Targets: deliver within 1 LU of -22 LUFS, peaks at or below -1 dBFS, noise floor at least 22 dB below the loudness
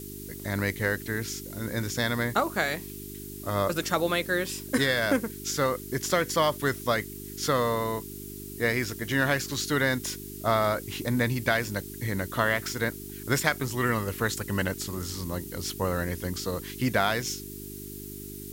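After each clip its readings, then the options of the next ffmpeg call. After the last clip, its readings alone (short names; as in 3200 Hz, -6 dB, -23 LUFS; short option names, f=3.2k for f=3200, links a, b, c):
hum 50 Hz; harmonics up to 400 Hz; hum level -39 dBFS; noise floor -40 dBFS; noise floor target -50 dBFS; loudness -28.0 LUFS; peak -5.5 dBFS; loudness target -22.0 LUFS
-> -af "bandreject=f=50:t=h:w=4,bandreject=f=100:t=h:w=4,bandreject=f=150:t=h:w=4,bandreject=f=200:t=h:w=4,bandreject=f=250:t=h:w=4,bandreject=f=300:t=h:w=4,bandreject=f=350:t=h:w=4,bandreject=f=400:t=h:w=4"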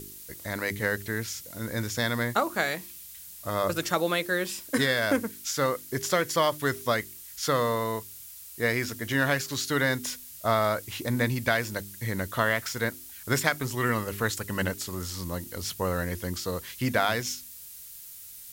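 hum none; noise floor -45 dBFS; noise floor target -51 dBFS
-> -af "afftdn=nr=6:nf=-45"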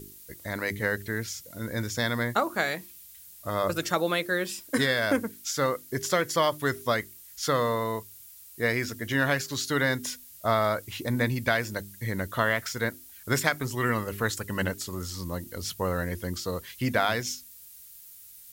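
noise floor -49 dBFS; noise floor target -51 dBFS
-> -af "afftdn=nr=6:nf=-49"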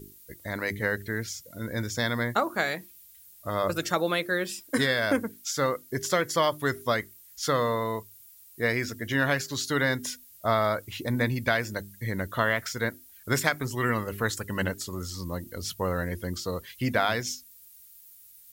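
noise floor -53 dBFS; loudness -28.5 LUFS; peak -6.0 dBFS; loudness target -22.0 LUFS
-> -af "volume=6.5dB,alimiter=limit=-1dB:level=0:latency=1"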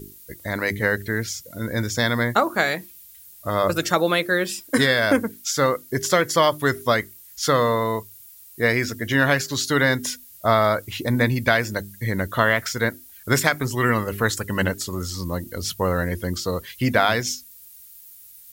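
loudness -22.0 LUFS; peak -1.0 dBFS; noise floor -46 dBFS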